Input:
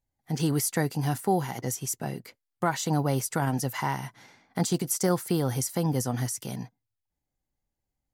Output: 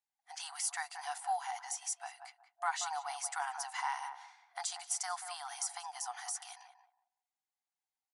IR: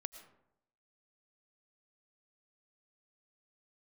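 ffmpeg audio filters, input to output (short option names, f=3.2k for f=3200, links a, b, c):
-filter_complex "[0:a]afftfilt=real='re*between(b*sr/4096,690,11000)':imag='im*between(b*sr/4096,690,11000)':win_size=4096:overlap=0.75,asplit=2[a][b];[b]adelay=184,lowpass=f=880:p=1,volume=-4.5dB,asplit=2[c][d];[d]adelay=184,lowpass=f=880:p=1,volume=0.28,asplit=2[e][f];[f]adelay=184,lowpass=f=880:p=1,volume=0.28,asplit=2[g][h];[h]adelay=184,lowpass=f=880:p=1,volume=0.28[i];[c][e][g][i]amix=inputs=4:normalize=0[j];[a][j]amix=inputs=2:normalize=0,volume=-5.5dB"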